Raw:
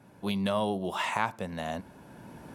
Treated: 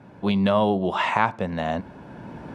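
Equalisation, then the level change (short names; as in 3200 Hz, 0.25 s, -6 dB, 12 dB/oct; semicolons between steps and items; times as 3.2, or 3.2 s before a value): LPF 3100 Hz 6 dB/oct; air absorption 65 m; +9.0 dB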